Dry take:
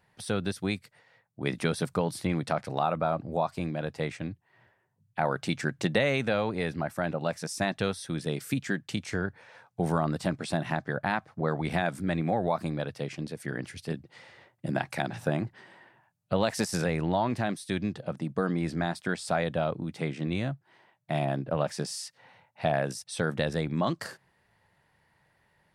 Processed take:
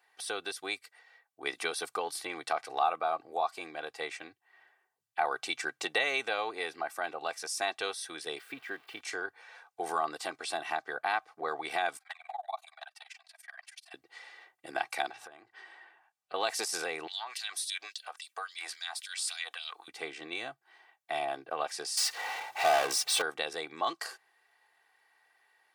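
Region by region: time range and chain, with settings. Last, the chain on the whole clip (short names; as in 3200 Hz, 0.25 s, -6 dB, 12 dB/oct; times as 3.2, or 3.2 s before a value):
8.38–9.01 switching spikes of -28.5 dBFS + air absorption 480 m
11.97–13.94 steep high-pass 640 Hz 96 dB/oct + AM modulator 21 Hz, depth 95% + envelope flanger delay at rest 4.5 ms, full sweep at -32.5 dBFS
15.11–16.34 high shelf 10000 Hz -10.5 dB + compressor 12:1, threshold -40 dBFS
17.07–19.88 LFO high-pass sine 3.6 Hz 750–4600 Hz + compressor 2.5:1, threshold -39 dBFS + high shelf 3600 Hz +9.5 dB
21.97–23.22 high shelf 4600 Hz -9 dB + power-law curve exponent 0.5 + HPF 86 Hz
whole clip: HPF 740 Hz 12 dB/oct; comb 2.6 ms, depth 66%; dynamic EQ 1700 Hz, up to -5 dB, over -46 dBFS, Q 4.1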